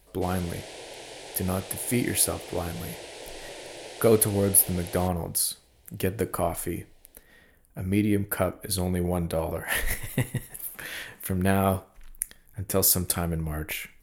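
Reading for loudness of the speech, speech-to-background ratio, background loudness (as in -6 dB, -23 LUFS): -26.5 LUFS, 14.5 dB, -41.0 LUFS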